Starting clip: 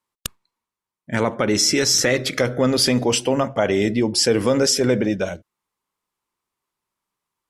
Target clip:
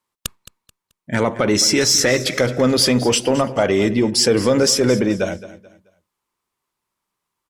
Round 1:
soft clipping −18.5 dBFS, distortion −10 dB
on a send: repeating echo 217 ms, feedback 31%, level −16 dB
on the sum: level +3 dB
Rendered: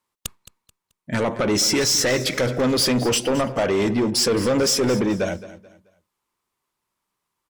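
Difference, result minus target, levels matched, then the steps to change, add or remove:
soft clipping: distortion +13 dB
change: soft clipping −7.5 dBFS, distortion −23 dB

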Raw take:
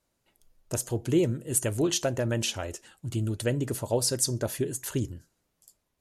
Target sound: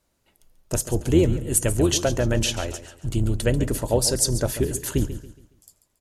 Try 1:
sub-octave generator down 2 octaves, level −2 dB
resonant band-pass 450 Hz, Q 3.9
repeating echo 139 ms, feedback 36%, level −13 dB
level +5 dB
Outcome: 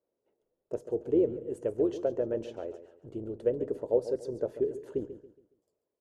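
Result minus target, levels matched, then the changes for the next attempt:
500 Hz band +5.5 dB
remove: resonant band-pass 450 Hz, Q 3.9

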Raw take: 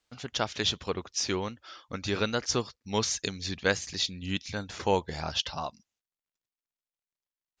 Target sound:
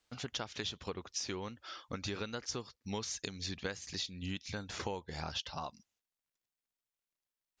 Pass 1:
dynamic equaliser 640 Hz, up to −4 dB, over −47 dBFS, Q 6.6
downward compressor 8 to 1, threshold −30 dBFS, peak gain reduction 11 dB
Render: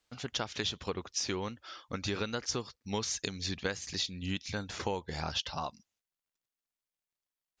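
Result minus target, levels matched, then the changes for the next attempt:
downward compressor: peak gain reduction −5 dB
change: downward compressor 8 to 1, threshold −36 dBFS, peak gain reduction 16 dB

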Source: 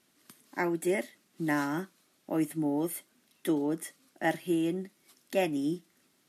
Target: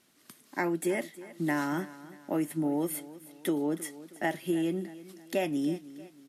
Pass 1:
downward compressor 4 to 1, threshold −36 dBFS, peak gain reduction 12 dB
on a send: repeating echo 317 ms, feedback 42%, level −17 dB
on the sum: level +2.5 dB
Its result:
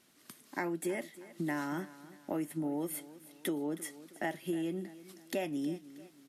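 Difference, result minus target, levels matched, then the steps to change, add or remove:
downward compressor: peak gain reduction +6 dB
change: downward compressor 4 to 1, threshold −28 dBFS, peak gain reduction 6 dB

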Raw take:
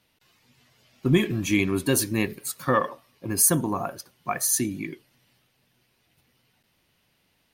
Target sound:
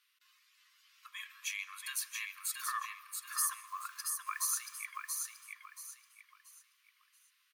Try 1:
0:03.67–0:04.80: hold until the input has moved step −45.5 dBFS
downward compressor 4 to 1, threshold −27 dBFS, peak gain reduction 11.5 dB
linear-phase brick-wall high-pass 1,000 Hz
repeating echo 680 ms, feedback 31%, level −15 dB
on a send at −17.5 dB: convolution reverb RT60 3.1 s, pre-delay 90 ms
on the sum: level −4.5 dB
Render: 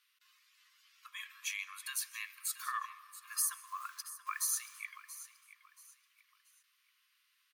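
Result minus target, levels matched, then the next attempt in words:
echo-to-direct −9 dB
0:03.67–0:04.80: hold until the input has moved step −45.5 dBFS
downward compressor 4 to 1, threshold −27 dBFS, peak gain reduction 11.5 dB
linear-phase brick-wall high-pass 1,000 Hz
repeating echo 680 ms, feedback 31%, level −4.5 dB
on a send at −17.5 dB: convolution reverb RT60 3.1 s, pre-delay 90 ms
on the sum: level −4.5 dB

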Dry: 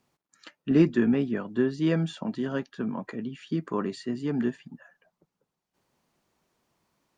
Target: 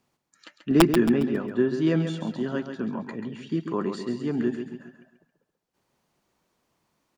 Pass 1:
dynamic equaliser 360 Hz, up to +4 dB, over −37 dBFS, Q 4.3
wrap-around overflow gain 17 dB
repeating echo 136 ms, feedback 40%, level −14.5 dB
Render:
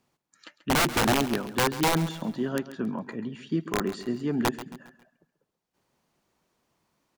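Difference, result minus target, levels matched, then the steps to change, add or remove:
wrap-around overflow: distortion +17 dB; echo-to-direct −6.5 dB
change: wrap-around overflow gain 8 dB
change: repeating echo 136 ms, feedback 40%, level −8 dB

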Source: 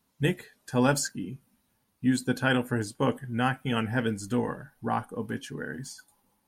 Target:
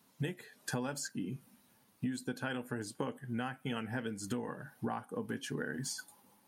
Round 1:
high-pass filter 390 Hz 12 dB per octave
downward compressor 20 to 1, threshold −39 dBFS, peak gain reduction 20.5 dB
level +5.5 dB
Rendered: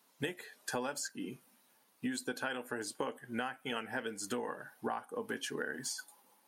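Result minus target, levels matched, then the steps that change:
125 Hz band −11.0 dB
change: high-pass filter 130 Hz 12 dB per octave

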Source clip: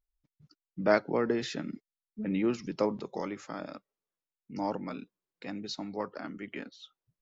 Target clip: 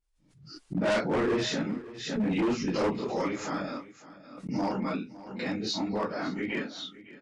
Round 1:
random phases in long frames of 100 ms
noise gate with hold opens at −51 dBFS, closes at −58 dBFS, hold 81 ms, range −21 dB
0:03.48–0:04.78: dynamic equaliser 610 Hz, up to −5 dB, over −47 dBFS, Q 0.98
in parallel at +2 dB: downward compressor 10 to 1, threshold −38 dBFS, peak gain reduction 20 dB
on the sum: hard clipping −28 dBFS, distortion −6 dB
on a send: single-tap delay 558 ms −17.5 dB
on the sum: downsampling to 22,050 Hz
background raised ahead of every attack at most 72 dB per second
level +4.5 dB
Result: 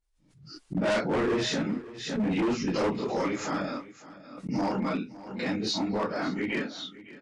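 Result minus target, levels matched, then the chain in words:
downward compressor: peak gain reduction −7 dB
random phases in long frames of 100 ms
noise gate with hold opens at −51 dBFS, closes at −58 dBFS, hold 81 ms, range −21 dB
0:03.48–0:04.78: dynamic equaliser 610 Hz, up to −5 dB, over −47 dBFS, Q 0.98
in parallel at +2 dB: downward compressor 10 to 1, threshold −45.5 dBFS, peak gain reduction 27 dB
on the sum: hard clipping −28 dBFS, distortion −7 dB
on a send: single-tap delay 558 ms −17.5 dB
on the sum: downsampling to 22,050 Hz
background raised ahead of every attack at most 72 dB per second
level +4.5 dB

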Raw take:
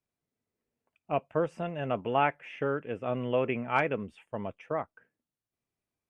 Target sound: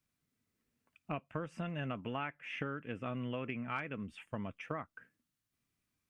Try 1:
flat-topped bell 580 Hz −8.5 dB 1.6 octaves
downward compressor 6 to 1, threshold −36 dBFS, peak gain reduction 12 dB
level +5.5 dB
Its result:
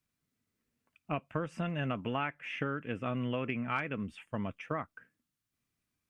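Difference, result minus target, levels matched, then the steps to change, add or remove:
downward compressor: peak gain reduction −5 dB
change: downward compressor 6 to 1, threshold −42 dBFS, peak gain reduction 17 dB

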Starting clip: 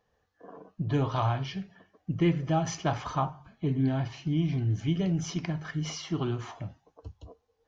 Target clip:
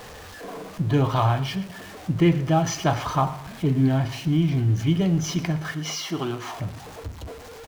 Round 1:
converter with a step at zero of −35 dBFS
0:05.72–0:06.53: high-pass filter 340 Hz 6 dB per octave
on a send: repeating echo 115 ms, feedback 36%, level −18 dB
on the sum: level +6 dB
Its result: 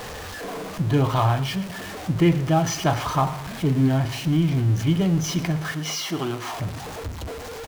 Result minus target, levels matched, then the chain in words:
converter with a step at zero: distortion +6 dB
converter with a step at zero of −41.5 dBFS
0:05.72–0:06.53: high-pass filter 340 Hz 6 dB per octave
on a send: repeating echo 115 ms, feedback 36%, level −18 dB
on the sum: level +6 dB

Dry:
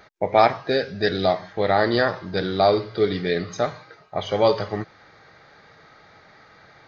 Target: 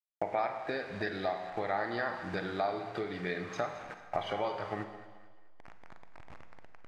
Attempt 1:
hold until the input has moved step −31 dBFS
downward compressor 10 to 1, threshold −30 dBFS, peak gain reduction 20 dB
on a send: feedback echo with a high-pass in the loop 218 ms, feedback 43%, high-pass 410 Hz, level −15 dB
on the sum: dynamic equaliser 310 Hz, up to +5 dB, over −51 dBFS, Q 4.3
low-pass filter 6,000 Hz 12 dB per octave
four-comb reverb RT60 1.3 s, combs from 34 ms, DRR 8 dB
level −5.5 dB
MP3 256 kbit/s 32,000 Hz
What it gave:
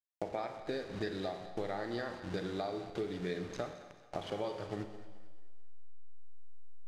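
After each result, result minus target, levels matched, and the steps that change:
hold until the input has moved: distortion +8 dB; 1,000 Hz band −4.5 dB
change: hold until the input has moved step −39 dBFS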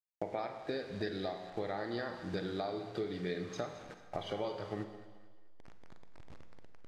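1,000 Hz band −4.0 dB
add after low-pass filter: flat-topped bell 1,300 Hz +8.5 dB 2.3 octaves

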